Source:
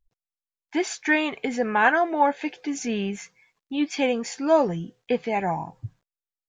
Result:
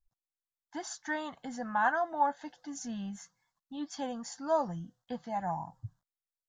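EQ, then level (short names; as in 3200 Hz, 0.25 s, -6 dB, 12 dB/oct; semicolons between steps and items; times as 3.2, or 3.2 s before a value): fixed phaser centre 1000 Hz, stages 4; -6.5 dB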